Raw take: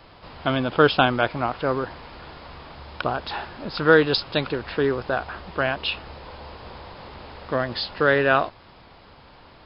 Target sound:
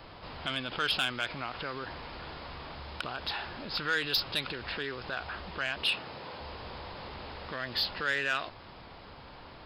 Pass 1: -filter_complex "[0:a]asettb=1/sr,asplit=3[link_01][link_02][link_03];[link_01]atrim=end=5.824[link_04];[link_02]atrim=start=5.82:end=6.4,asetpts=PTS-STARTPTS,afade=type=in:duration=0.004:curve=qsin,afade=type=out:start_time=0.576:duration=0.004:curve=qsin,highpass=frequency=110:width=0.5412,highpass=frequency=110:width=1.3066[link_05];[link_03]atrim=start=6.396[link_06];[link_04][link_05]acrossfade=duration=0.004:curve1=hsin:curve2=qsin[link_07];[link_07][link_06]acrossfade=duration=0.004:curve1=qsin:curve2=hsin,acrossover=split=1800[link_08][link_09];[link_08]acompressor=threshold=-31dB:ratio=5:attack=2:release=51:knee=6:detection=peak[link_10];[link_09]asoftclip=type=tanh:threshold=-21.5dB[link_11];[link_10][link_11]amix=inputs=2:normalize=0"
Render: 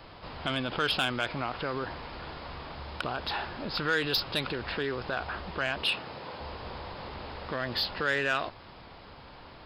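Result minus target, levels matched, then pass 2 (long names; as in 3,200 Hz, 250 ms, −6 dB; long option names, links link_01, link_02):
downward compressor: peak gain reduction −7 dB
-filter_complex "[0:a]asettb=1/sr,asplit=3[link_01][link_02][link_03];[link_01]atrim=end=5.824[link_04];[link_02]atrim=start=5.82:end=6.4,asetpts=PTS-STARTPTS,afade=type=in:duration=0.004:curve=qsin,afade=type=out:start_time=0.576:duration=0.004:curve=qsin,highpass=frequency=110:width=0.5412,highpass=frequency=110:width=1.3066[link_05];[link_03]atrim=start=6.396[link_06];[link_04][link_05]acrossfade=duration=0.004:curve1=hsin:curve2=qsin[link_07];[link_07][link_06]acrossfade=duration=0.004:curve1=qsin:curve2=hsin,acrossover=split=1800[link_08][link_09];[link_08]acompressor=threshold=-39.5dB:ratio=5:attack=2:release=51:knee=6:detection=peak[link_10];[link_09]asoftclip=type=tanh:threshold=-21.5dB[link_11];[link_10][link_11]amix=inputs=2:normalize=0"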